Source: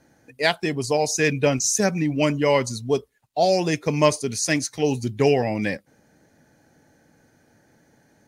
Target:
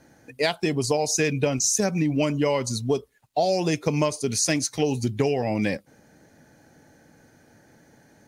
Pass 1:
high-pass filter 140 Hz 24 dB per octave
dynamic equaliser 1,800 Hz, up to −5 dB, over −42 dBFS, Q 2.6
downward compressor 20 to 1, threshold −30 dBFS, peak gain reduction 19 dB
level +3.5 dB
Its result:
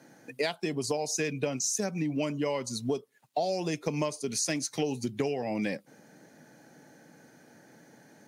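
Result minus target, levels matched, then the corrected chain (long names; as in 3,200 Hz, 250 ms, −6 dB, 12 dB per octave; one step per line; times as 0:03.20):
downward compressor: peak gain reduction +7.5 dB; 125 Hz band −2.5 dB
dynamic equaliser 1,800 Hz, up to −5 dB, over −42 dBFS, Q 2.6
downward compressor 20 to 1, threshold −22 dBFS, peak gain reduction 11.5 dB
level +3.5 dB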